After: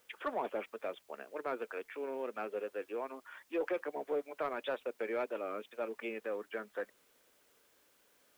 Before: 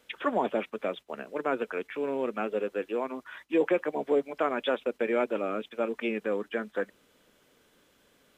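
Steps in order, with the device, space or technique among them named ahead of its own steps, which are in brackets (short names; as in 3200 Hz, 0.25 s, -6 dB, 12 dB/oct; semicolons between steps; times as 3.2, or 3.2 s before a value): tape answering machine (BPF 360–3000 Hz; soft clip -19 dBFS, distortion -20 dB; wow and flutter; white noise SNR 31 dB); gain -6.5 dB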